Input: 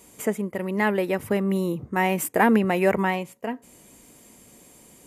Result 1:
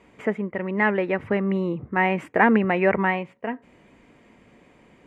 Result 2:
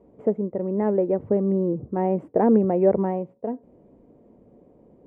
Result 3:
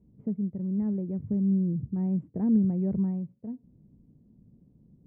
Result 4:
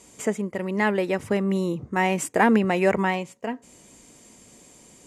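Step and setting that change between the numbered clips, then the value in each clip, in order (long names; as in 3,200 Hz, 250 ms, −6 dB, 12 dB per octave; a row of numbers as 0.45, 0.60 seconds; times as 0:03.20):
low-pass with resonance, frequency: 2,100, 540, 160, 7,000 Hertz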